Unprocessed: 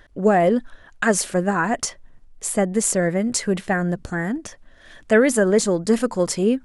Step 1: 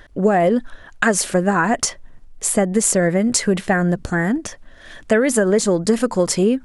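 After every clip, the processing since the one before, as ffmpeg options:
-af "acompressor=threshold=-18dB:ratio=6,volume=6dB"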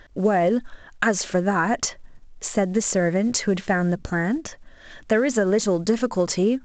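-af "volume=-4dB" -ar 16000 -c:a pcm_mulaw

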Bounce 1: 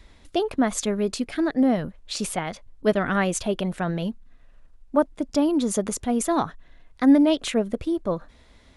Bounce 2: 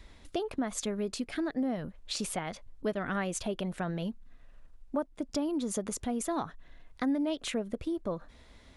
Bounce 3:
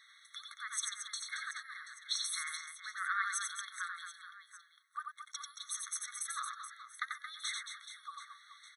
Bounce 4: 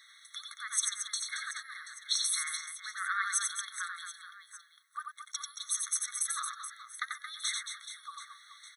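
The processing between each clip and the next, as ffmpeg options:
-af "acompressor=threshold=-31dB:ratio=2.5,volume=-2dB"
-af "aecho=1:1:90|225|427.5|731.2|1187:0.631|0.398|0.251|0.158|0.1,afftfilt=real='re*eq(mod(floor(b*sr/1024/1100),2),1)':imag='im*eq(mod(floor(b*sr/1024/1100),2),1)':win_size=1024:overlap=0.75,volume=2dB"
-af "highshelf=f=4.3k:g=8.5,volume=1dB"

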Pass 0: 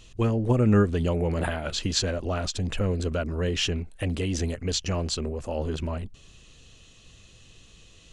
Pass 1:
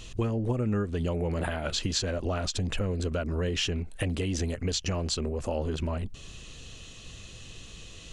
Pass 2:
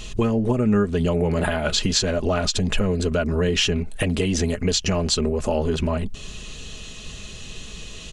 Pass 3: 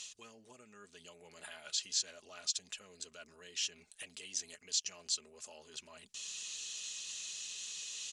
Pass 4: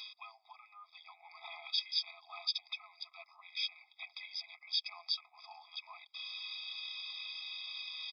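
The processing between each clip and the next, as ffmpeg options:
-af "acompressor=threshold=-35dB:ratio=4,volume=7dB"
-af "aecho=1:1:4.8:0.41,volume=8dB"
-af "areverse,acompressor=threshold=-28dB:ratio=12,areverse,bandpass=f=6.6k:t=q:w=1.3:csg=0,volume=1.5dB"
-af "aresample=11025,aresample=44100,afftfilt=real='re*eq(mod(floor(b*sr/1024/650),2),1)':imag='im*eq(mod(floor(b*sr/1024/650),2),1)':win_size=1024:overlap=0.75,volume=8dB"

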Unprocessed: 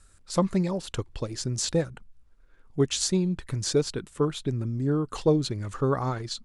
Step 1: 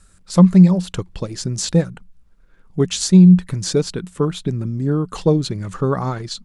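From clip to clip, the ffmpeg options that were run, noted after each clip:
-af "equalizer=f=180:t=o:w=0.23:g=14.5,volume=5dB"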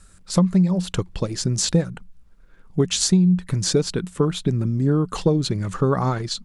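-af "acompressor=threshold=-15dB:ratio=10,volume=1.5dB"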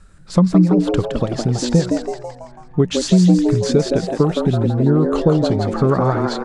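-filter_complex "[0:a]aemphasis=mode=reproduction:type=75kf,asplit=7[a][b][c][d][e][f][g];[b]adelay=165,afreqshift=120,volume=-5.5dB[h];[c]adelay=330,afreqshift=240,volume=-11.7dB[i];[d]adelay=495,afreqshift=360,volume=-17.9dB[j];[e]adelay=660,afreqshift=480,volume=-24.1dB[k];[f]adelay=825,afreqshift=600,volume=-30.3dB[l];[g]adelay=990,afreqshift=720,volume=-36.5dB[m];[a][h][i][j][k][l][m]amix=inputs=7:normalize=0,volume=4dB"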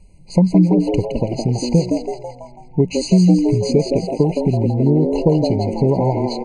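-af "afftfilt=real='re*eq(mod(floor(b*sr/1024/1000),2),0)':imag='im*eq(mod(floor(b*sr/1024/1000),2),0)':win_size=1024:overlap=0.75"

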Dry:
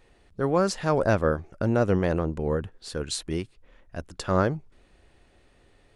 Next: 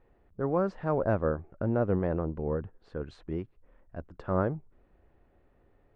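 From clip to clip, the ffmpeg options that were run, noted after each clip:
-af "lowpass=1.3k,volume=-4.5dB"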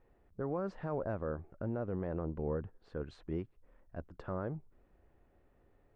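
-af "alimiter=limit=-23.5dB:level=0:latency=1:release=102,volume=-3.5dB"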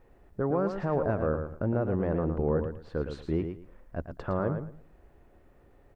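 -af "aecho=1:1:112|224|336:0.422|0.0928|0.0204,volume=8.5dB"

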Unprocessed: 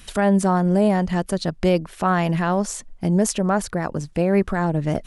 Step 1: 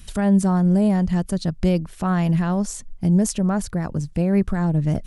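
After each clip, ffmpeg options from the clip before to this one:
-af "bass=f=250:g=12,treble=f=4k:g=5,volume=-6.5dB"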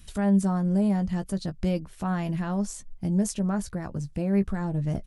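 -filter_complex "[0:a]asplit=2[a][b];[b]adelay=15,volume=-9dB[c];[a][c]amix=inputs=2:normalize=0,volume=-7dB"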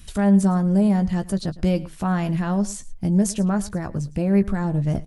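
-af "aecho=1:1:109:0.112,volume=5.5dB"

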